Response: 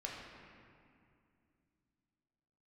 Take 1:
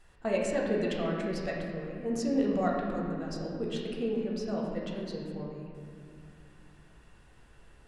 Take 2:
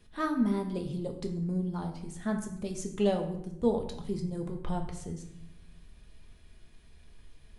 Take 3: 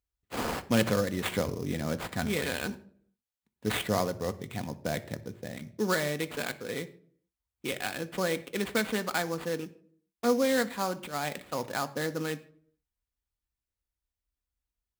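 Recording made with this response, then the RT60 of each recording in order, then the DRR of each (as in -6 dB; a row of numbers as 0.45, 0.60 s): 1; 2.4, 0.80, 0.55 s; -3.0, 3.0, 9.5 dB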